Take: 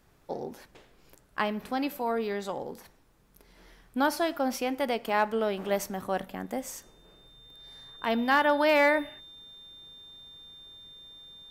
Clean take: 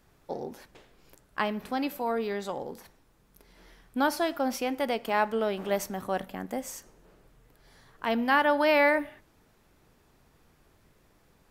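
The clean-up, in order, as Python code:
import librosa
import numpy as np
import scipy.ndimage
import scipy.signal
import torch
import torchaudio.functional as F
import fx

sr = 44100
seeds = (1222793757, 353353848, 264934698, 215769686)

y = fx.fix_declip(x, sr, threshold_db=-14.0)
y = fx.notch(y, sr, hz=3600.0, q=30.0)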